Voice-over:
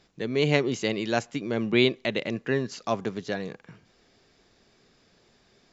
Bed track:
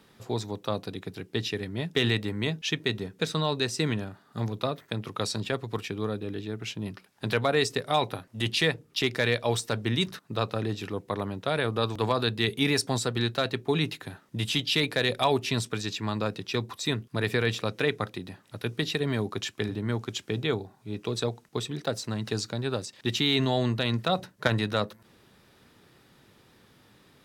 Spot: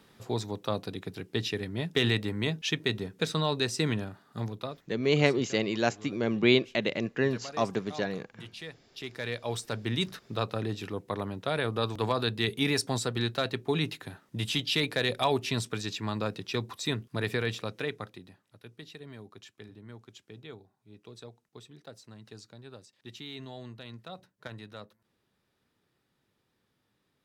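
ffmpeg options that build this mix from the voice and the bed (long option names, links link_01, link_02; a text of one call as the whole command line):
ffmpeg -i stem1.wav -i stem2.wav -filter_complex "[0:a]adelay=4700,volume=-1dB[link_01];[1:a]volume=14.5dB,afade=type=out:start_time=4.21:duration=0.71:silence=0.141254,afade=type=in:start_time=8.87:duration=1.21:silence=0.16788,afade=type=out:start_time=17.08:duration=1.51:silence=0.16788[link_02];[link_01][link_02]amix=inputs=2:normalize=0" out.wav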